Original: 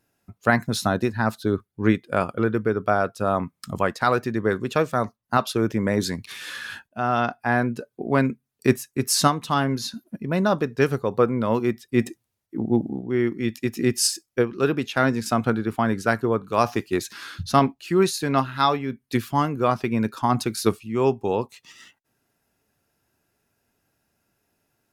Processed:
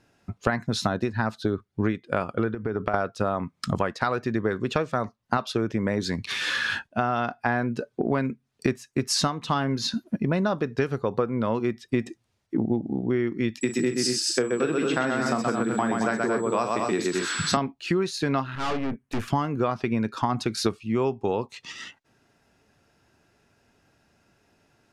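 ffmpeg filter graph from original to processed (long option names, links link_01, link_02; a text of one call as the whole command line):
ffmpeg -i in.wav -filter_complex "[0:a]asettb=1/sr,asplit=3[link_01][link_02][link_03];[link_01]atrim=end=2.544[link_04];[link_02]atrim=start=2.54:end=2.94,asetpts=PTS-STARTPTS,afade=type=in:duration=0.004:curve=qsin,afade=type=out:start_time=0.396:duration=0.004:curve=qsin,highshelf=frequency=3600:gain=-7.5,acompressor=threshold=-28dB:ratio=12:attack=3.2:release=140:knee=1:detection=peak[link_05];[link_03]atrim=start=2.936[link_06];[link_04][link_05]acrossfade=duration=0.004:curve1=hsin:curve2=qsin[link_07];[link_07][link_06]acrossfade=duration=0.004:curve1=qsin:curve2=hsin,asettb=1/sr,asplit=3[link_08][link_09][link_10];[link_08]atrim=end=13.614[link_11];[link_09]atrim=start=13.61:end=17.57,asetpts=PTS-STARTPTS,afade=type=in:duration=0.004:curve=qsin,afade=type=out:start_time=3.956:duration=0.004:curve=qsin,highpass=frequency=140:width=0.5412,highpass=frequency=140:width=1.3066,aecho=1:1:40|126|223|255:0.335|0.668|0.447|0.282,atrim=end_sample=174636,aeval=exprs='val(0)+0.0178*sin(2*PI*7800*n/s)':channel_layout=same[link_12];[link_10]atrim=start=17.566[link_13];[link_11][link_12]acrossfade=duration=0.004:curve1=hsin:curve2=qsin[link_14];[link_14][link_13]acrossfade=duration=0.004:curve1=qsin:curve2=hsin,asettb=1/sr,asplit=3[link_15][link_16][link_17];[link_15]atrim=end=18.554[link_18];[link_16]atrim=start=18.55:end=19.28,asetpts=PTS-STARTPTS,afade=type=in:duration=0.004:curve=qsin,afade=type=out:start_time=0.726:duration=0.004:curve=qsin,equalizer=frequency=4300:width_type=o:width=0.87:gain=-15,aeval=exprs='(tanh(50.1*val(0)+0.7)-tanh(0.7))/50.1':channel_layout=same[link_19];[link_17]atrim=start=19.276[link_20];[link_18][link_19]acrossfade=duration=0.004:curve1=hsin:curve2=qsin[link_21];[link_21][link_20]acrossfade=duration=0.004:curve1=qsin:curve2=hsin,lowpass=6000,acompressor=threshold=-30dB:ratio=12,volume=9dB" out.wav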